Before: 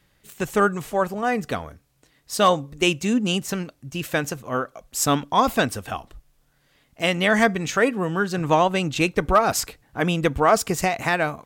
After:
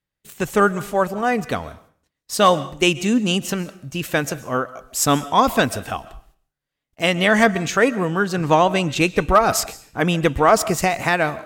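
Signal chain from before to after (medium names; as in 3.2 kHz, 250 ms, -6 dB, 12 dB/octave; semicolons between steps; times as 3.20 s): gate -55 dBFS, range -25 dB; on a send: reverberation RT60 0.45 s, pre-delay 95 ms, DRR 17 dB; on the sum: trim +3 dB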